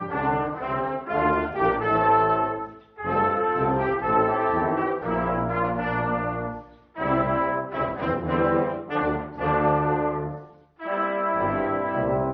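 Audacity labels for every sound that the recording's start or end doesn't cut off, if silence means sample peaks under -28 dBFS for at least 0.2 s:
3.000000	6.580000	sound
6.980000	10.380000	sound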